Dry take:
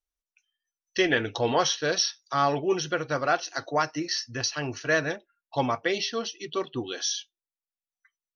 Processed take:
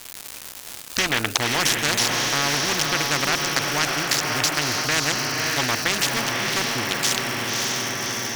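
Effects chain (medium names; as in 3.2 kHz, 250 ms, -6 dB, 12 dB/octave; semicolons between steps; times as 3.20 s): local Wiener filter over 41 samples; graphic EQ 125/250/500/2000/4000 Hz +5/+6/-11/+11/-10 dB; in parallel at +0.5 dB: peak limiter -18.5 dBFS, peak gain reduction 11 dB; on the sum: crackle 320 per s -45 dBFS; treble shelf 4.8 kHz +8 dB; on a send: echo that smears into a reverb 584 ms, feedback 49%, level -9 dB; on the sum: spectrum-flattening compressor 4:1; trim +2.5 dB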